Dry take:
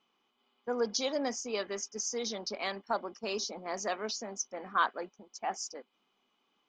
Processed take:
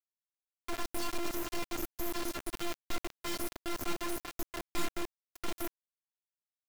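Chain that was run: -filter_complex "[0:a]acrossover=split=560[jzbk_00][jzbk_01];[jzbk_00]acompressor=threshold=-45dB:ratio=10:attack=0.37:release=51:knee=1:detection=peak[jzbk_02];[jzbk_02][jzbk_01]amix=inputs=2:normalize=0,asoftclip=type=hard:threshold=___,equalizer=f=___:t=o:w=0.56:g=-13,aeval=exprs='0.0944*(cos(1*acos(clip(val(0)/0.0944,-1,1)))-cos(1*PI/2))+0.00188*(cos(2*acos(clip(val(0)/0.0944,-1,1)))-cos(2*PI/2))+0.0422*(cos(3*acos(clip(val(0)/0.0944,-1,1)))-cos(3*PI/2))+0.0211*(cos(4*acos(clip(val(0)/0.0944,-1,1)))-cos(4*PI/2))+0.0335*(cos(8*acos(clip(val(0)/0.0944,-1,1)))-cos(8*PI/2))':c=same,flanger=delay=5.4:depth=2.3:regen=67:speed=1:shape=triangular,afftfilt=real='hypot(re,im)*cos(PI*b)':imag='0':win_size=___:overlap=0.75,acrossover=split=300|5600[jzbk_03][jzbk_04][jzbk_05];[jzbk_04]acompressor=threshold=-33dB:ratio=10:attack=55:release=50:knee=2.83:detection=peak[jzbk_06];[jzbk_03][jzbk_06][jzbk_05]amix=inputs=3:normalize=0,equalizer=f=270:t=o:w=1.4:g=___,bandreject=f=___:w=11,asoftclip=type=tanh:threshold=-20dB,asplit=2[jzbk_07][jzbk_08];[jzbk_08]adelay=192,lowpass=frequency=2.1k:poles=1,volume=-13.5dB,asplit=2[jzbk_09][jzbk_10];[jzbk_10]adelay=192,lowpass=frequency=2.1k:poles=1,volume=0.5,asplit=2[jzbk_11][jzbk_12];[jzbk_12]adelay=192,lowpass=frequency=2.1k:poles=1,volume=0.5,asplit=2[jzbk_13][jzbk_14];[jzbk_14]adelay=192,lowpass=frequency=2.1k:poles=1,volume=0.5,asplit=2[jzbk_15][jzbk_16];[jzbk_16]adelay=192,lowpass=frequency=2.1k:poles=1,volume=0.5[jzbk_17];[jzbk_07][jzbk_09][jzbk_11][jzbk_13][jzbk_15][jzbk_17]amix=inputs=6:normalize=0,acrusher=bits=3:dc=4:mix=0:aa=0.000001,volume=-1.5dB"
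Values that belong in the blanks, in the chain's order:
-22dB, 3.3k, 512, 12.5, 1.7k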